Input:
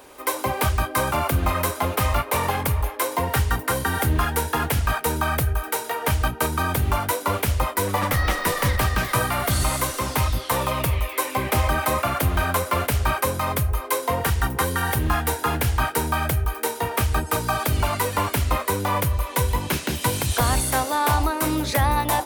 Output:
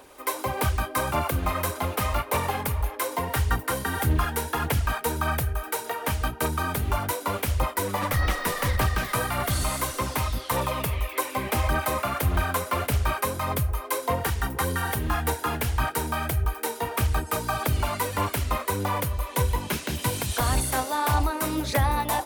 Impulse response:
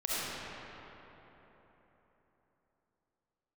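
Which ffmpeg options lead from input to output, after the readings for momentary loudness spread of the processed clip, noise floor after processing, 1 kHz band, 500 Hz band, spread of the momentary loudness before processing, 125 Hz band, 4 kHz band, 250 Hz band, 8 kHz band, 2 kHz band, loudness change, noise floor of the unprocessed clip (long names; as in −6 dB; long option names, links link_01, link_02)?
4 LU, −39 dBFS, −4.0 dB, −3.5 dB, 3 LU, −3.5 dB, −4.0 dB, −3.5 dB, −4.0 dB, −4.0 dB, −3.5 dB, −35 dBFS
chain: -af "aphaser=in_gain=1:out_gain=1:delay=4.9:decay=0.31:speed=1.7:type=sinusoidal,volume=-4.5dB"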